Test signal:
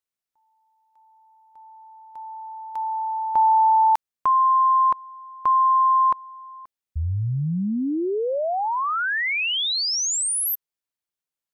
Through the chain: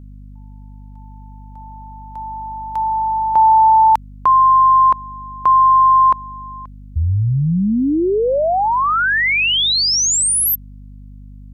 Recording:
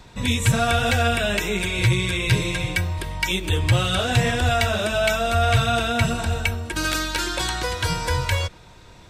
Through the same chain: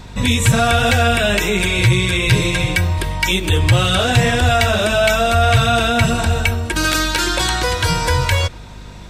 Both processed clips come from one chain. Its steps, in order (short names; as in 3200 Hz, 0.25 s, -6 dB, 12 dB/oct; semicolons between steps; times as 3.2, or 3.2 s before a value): in parallel at +1 dB: limiter -16.5 dBFS; on the sum: hum 50 Hz, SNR 21 dB; gain +1.5 dB